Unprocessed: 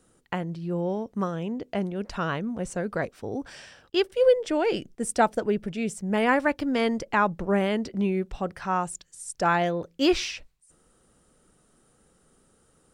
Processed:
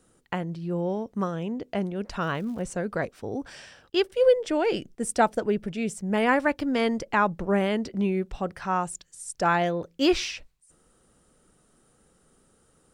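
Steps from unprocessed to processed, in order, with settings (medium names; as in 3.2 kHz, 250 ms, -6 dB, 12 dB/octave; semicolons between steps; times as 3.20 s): 2.21–2.61 s: crackle 360 per s -45 dBFS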